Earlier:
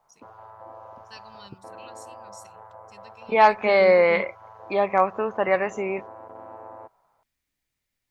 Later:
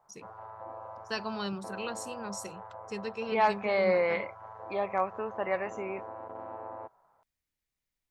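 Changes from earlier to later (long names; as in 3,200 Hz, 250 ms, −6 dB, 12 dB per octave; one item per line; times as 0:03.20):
first voice: remove guitar amp tone stack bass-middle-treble 5-5-5
second voice −9.5 dB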